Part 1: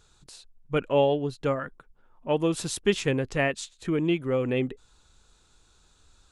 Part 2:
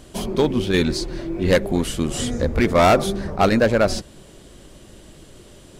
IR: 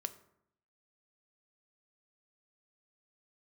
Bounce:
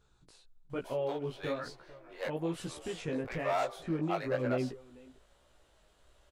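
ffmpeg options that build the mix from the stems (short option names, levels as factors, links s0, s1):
-filter_complex "[0:a]alimiter=limit=0.0891:level=0:latency=1:release=126,volume=0.75,asplit=2[s0][s1];[s1]volume=0.1[s2];[1:a]highpass=f=580:w=0.5412,highpass=f=580:w=1.3066,adelay=700,volume=0.266[s3];[s2]aecho=0:1:445:1[s4];[s0][s3][s4]amix=inputs=3:normalize=0,equalizer=f=8000:t=o:w=2.7:g=-10,flanger=delay=15.5:depth=4:speed=1.1"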